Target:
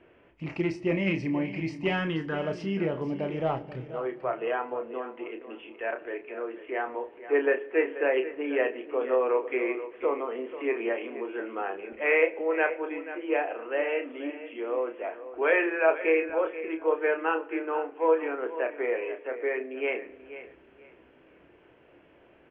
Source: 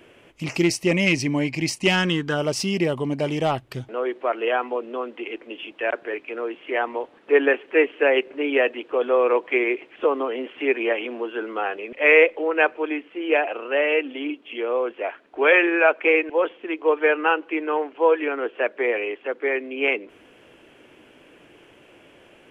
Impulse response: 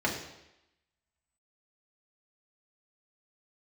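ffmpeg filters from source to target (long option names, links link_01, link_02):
-filter_complex "[0:a]lowpass=2000,equalizer=frequency=65:width=2.4:gain=8.5,asplit=2[link_01][link_02];[link_02]adelay=31,volume=-7.5dB[link_03];[link_01][link_03]amix=inputs=2:normalize=0,aecho=1:1:484|968|1452:0.211|0.0486|0.0112,asplit=2[link_04][link_05];[1:a]atrim=start_sample=2205[link_06];[link_05][link_06]afir=irnorm=-1:irlink=0,volume=-21.5dB[link_07];[link_04][link_07]amix=inputs=2:normalize=0,volume=-8dB"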